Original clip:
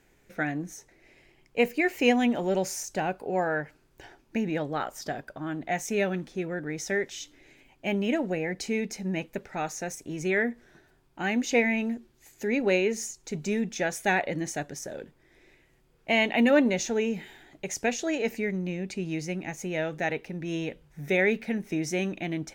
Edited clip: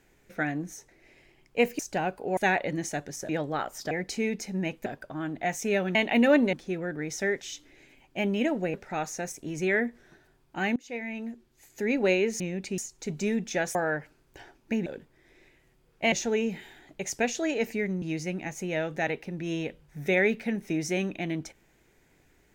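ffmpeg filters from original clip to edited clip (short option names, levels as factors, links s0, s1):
-filter_complex "[0:a]asplit=16[s0][s1][s2][s3][s4][s5][s6][s7][s8][s9][s10][s11][s12][s13][s14][s15];[s0]atrim=end=1.792[s16];[s1]atrim=start=2.808:end=3.392[s17];[s2]atrim=start=13.998:end=14.922[s18];[s3]atrim=start=4.498:end=5.122[s19];[s4]atrim=start=8.418:end=9.372[s20];[s5]atrim=start=5.118:end=6.212[s21];[s6]atrim=start=16.178:end=16.762[s22];[s7]atrim=start=6.208:end=8.422[s23];[s8]atrim=start=9.368:end=11.39,asetpts=PTS-STARTPTS,afade=t=out:st=2.018:d=0.004:c=hsin:silence=0.0630957[s24];[s9]atrim=start=11.39:end=13.032,asetpts=PTS-STARTPTS,afade=t=in:d=1.13:silence=0.0630957[s25];[s10]atrim=start=18.658:end=19.042[s26];[s11]atrim=start=13.028:end=14.002[s27];[s12]atrim=start=3.388:end=4.502[s28];[s13]atrim=start=14.918:end=16.182[s29];[s14]atrim=start=16.758:end=18.662[s30];[s15]atrim=start=19.038[s31];[s16][s17]acrossfade=d=0.004:c1=hsin:c2=hsin[s32];[s32][s18]acrossfade=d=0.004:c1=hsin:c2=hsin[s33];[s33][s19]acrossfade=d=0.004:c1=hsin:c2=hsin[s34];[s34][s20]acrossfade=d=0.004:c1=hsin:c2=hsin[s35];[s35][s21]acrossfade=d=0.004:c1=hsin:c2=hsin[s36];[s36][s22]acrossfade=d=0.004:c1=hsin:c2=hsin[s37];[s37][s23]acrossfade=d=0.004:c1=hsin:c2=hsin[s38];[s24][s25]concat=n=2:v=0:a=1[s39];[s38][s39]acrossfade=d=0.004:c1=hsin:c2=hsin[s40];[s40][s26]acrossfade=d=0.004:c1=hsin:c2=hsin[s41];[s41][s27]acrossfade=d=0.004:c1=hsin:c2=hsin[s42];[s42][s28]acrossfade=d=0.004:c1=hsin:c2=hsin[s43];[s43][s29]acrossfade=d=0.004:c1=hsin:c2=hsin[s44];[s44][s30]acrossfade=d=0.004:c1=hsin:c2=hsin[s45];[s45][s31]acrossfade=d=0.004:c1=hsin:c2=hsin"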